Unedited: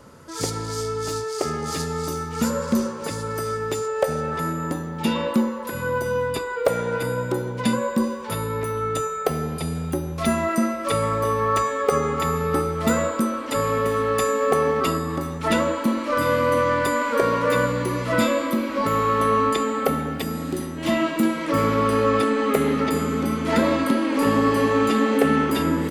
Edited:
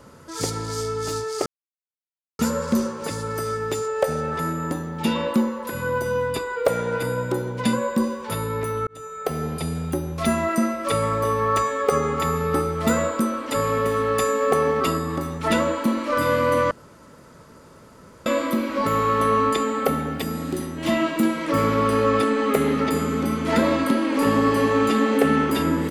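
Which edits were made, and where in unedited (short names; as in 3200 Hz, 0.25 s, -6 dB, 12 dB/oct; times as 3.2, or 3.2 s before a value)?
1.46–2.39 mute
8.87–9.46 fade in
16.71–18.26 room tone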